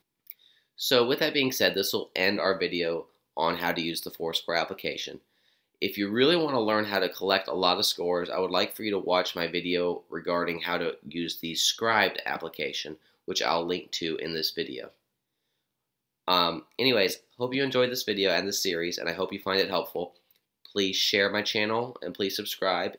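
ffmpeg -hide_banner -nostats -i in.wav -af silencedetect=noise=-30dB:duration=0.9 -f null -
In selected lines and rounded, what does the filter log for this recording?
silence_start: 14.84
silence_end: 16.28 | silence_duration: 1.44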